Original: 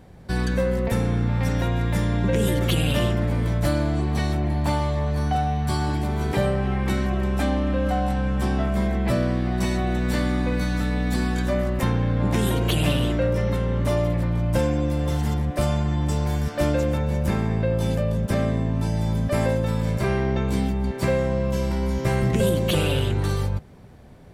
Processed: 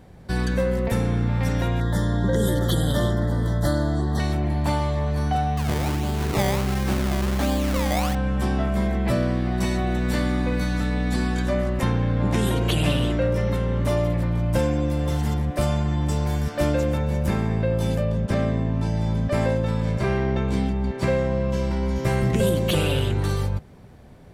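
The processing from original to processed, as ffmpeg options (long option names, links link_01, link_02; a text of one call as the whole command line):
ffmpeg -i in.wav -filter_complex "[0:a]asettb=1/sr,asplit=3[link_01][link_02][link_03];[link_01]atrim=end=1.804[link_04];[link_02]atrim=start=1.8:end=4.2,asetpts=PTS-STARTPTS,afade=type=in:duration=0.004:curve=qsin,afade=type=out:start_time=2.396:duration=0.004:curve=qsin,asuperstop=centerf=2500:order=20:qfactor=2.3[link_05];[link_03]atrim=start=4.196[link_06];[link_04][link_05]acrossfade=duration=0.004:curve1=hsin:curve2=qsin[link_07];[link_07][link_06]acrossfade=duration=0.004:curve1=qsin:curve2=hsin,asettb=1/sr,asplit=3[link_08][link_09][link_10];[link_08]atrim=end=5.574[link_11];[link_09]atrim=start=5.57:end=8.15,asetpts=PTS-STARTPTS,afade=type=in:duration=0.004:curve=qsin,afade=type=out:start_time=2.576:duration=0.004:curve=qsin,acrusher=samples=22:mix=1:aa=0.000001:lfo=1:lforange=22:lforate=1.4[link_12];[link_10]atrim=start=8.146[link_13];[link_11][link_12]acrossfade=duration=0.004:curve1=hsin:curve2=qsin[link_14];[link_14][link_13]acrossfade=duration=0.004:curve1=qsin:curve2=hsin,asettb=1/sr,asplit=3[link_15][link_16][link_17];[link_15]atrim=end=10.774[link_18];[link_16]atrim=start=10.77:end=13.33,asetpts=PTS-STARTPTS,afade=type=in:duration=0.004:curve=qsin,afade=type=out:start_time=2.556:duration=0.004:curve=qsin,lowpass=11000[link_19];[link_17]atrim=start=13.326[link_20];[link_18][link_19]acrossfade=duration=0.004:curve1=hsin:curve2=qsin[link_21];[link_21][link_20]acrossfade=duration=0.004:curve1=qsin:curve2=hsin,asettb=1/sr,asplit=3[link_22][link_23][link_24];[link_22]atrim=end=18.054[link_25];[link_23]atrim=start=18.05:end=21.96,asetpts=PTS-STARTPTS,afade=type=in:duration=0.004:curve=qsin,afade=type=out:start_time=3.906:duration=0.004:curve=qsin,adynamicsmooth=sensitivity=7:basefreq=6400[link_26];[link_24]atrim=start=21.956[link_27];[link_25][link_26]acrossfade=duration=0.004:curve1=hsin:curve2=qsin[link_28];[link_28][link_27]acrossfade=duration=0.004:curve1=qsin:curve2=hsin" out.wav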